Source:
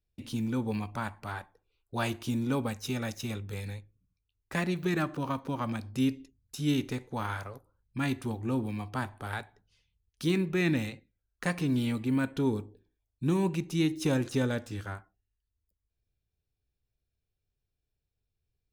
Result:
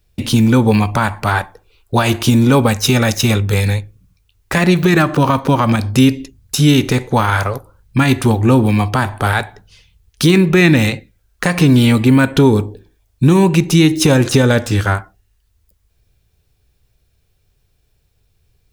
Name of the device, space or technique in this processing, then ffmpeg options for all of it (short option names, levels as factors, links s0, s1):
mastering chain: -af "equalizer=f=270:t=o:w=0.77:g=-3.5,acompressor=threshold=0.0282:ratio=2.5,alimiter=level_in=16.8:limit=0.891:release=50:level=0:latency=1,volume=0.891"